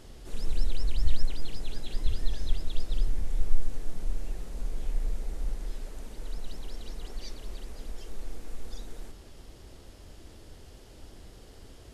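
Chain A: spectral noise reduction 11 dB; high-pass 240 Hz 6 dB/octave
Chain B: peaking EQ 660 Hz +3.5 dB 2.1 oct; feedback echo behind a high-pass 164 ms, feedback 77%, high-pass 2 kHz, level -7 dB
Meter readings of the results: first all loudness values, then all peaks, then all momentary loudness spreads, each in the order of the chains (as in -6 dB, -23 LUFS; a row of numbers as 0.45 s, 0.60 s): -50.0 LUFS, -38.5 LUFS; -30.0 dBFS, -8.0 dBFS; 21 LU, 16 LU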